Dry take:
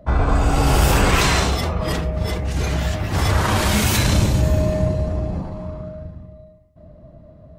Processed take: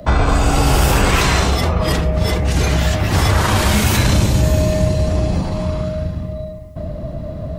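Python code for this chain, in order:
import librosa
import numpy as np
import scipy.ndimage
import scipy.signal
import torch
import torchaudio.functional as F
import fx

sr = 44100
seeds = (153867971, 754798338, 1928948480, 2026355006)

y = fx.band_squash(x, sr, depth_pct=70)
y = F.gain(torch.from_numpy(y), 3.0).numpy()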